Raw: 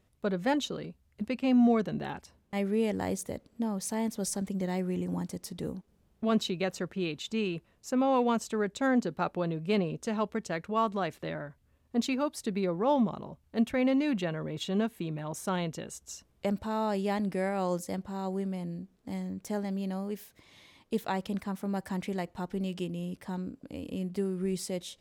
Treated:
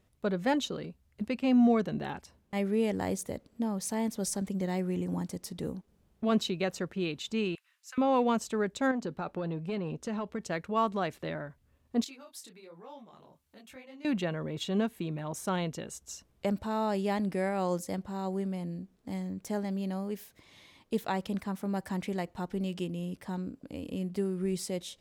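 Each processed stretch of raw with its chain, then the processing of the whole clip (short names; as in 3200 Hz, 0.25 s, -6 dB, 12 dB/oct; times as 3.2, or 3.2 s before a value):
7.55–7.98 HPF 1400 Hz 24 dB/oct + transient shaper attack -7 dB, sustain +3 dB
8.91–10.41 compressor 12:1, threshold -28 dBFS + high shelf 7600 Hz -6.5 dB + core saturation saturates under 380 Hz
12.04–14.05 compressor 3:1, threshold -46 dBFS + tilt +2.5 dB/oct + detuned doubles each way 40 cents
whole clip: dry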